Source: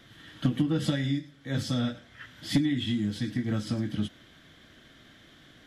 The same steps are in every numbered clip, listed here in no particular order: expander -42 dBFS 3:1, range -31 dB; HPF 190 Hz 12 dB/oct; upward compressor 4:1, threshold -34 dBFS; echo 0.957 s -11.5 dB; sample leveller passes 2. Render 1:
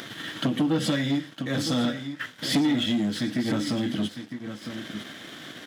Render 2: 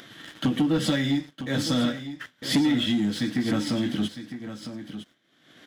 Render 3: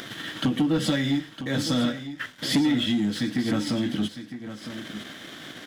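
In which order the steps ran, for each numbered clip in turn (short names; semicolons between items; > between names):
expander > upward compressor > echo > sample leveller > HPF; HPF > expander > sample leveller > echo > upward compressor; expander > HPF > upward compressor > sample leveller > echo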